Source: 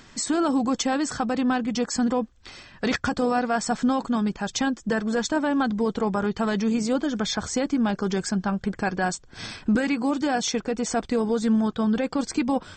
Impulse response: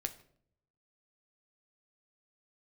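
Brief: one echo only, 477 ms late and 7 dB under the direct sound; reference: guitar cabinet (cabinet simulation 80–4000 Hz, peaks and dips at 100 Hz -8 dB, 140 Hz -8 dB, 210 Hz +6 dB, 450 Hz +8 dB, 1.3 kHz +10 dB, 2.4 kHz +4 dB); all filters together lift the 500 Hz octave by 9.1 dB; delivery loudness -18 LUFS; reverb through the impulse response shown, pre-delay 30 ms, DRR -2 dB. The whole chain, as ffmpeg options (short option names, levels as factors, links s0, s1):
-filter_complex "[0:a]equalizer=f=500:t=o:g=4,aecho=1:1:477:0.447,asplit=2[s0][s1];[1:a]atrim=start_sample=2205,adelay=30[s2];[s1][s2]afir=irnorm=-1:irlink=0,volume=1.26[s3];[s0][s3]amix=inputs=2:normalize=0,highpass=80,equalizer=f=100:t=q:w=4:g=-8,equalizer=f=140:t=q:w=4:g=-8,equalizer=f=210:t=q:w=4:g=6,equalizer=f=450:t=q:w=4:g=8,equalizer=f=1300:t=q:w=4:g=10,equalizer=f=2400:t=q:w=4:g=4,lowpass=f=4000:w=0.5412,lowpass=f=4000:w=1.3066,volume=0.708"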